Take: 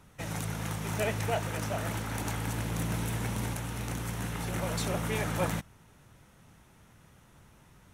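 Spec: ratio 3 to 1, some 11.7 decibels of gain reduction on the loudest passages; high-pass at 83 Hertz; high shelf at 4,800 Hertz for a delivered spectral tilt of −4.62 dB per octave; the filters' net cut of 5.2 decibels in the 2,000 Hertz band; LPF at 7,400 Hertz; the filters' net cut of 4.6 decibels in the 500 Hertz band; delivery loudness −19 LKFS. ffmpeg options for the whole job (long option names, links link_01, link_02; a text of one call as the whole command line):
ffmpeg -i in.wav -af "highpass=83,lowpass=7400,equalizer=frequency=500:width_type=o:gain=-5.5,equalizer=frequency=2000:width_type=o:gain=-7.5,highshelf=frequency=4800:gain=6.5,acompressor=threshold=-45dB:ratio=3,volume=26dB" out.wav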